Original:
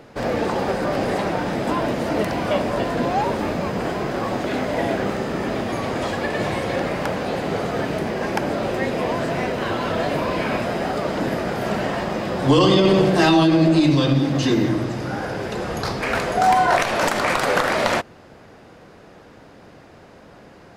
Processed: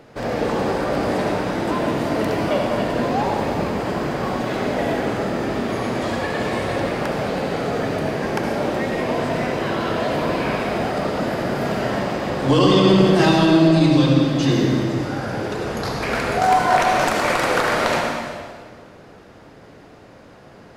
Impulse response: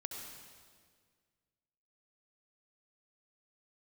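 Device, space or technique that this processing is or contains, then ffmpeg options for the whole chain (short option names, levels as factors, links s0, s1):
stairwell: -filter_complex "[1:a]atrim=start_sample=2205[s0];[0:a][s0]afir=irnorm=-1:irlink=0,volume=1.26"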